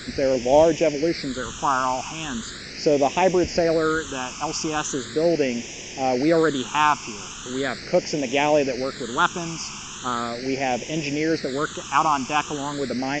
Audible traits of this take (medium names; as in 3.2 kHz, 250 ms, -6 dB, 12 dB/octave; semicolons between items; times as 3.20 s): a quantiser's noise floor 6-bit, dither triangular; phasing stages 8, 0.39 Hz, lowest notch 540–1300 Hz; µ-law